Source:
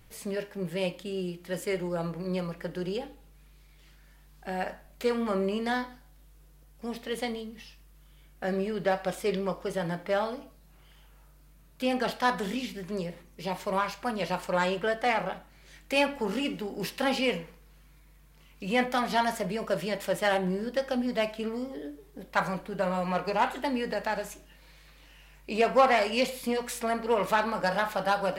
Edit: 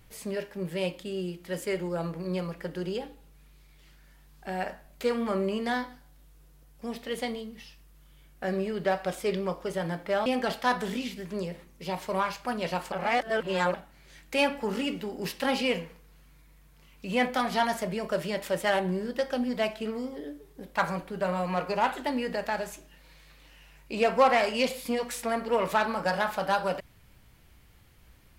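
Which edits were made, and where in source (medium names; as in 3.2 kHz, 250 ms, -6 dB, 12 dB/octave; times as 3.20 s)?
10.26–11.84 s: delete
14.50–15.32 s: reverse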